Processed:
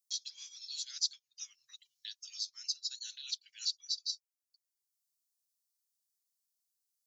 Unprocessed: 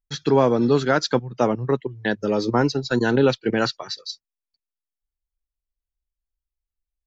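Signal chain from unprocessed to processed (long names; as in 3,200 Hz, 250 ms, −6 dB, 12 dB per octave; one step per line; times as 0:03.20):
inverse Chebyshev high-pass filter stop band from 790 Hz, stop band 80 dB
multiband upward and downward compressor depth 40%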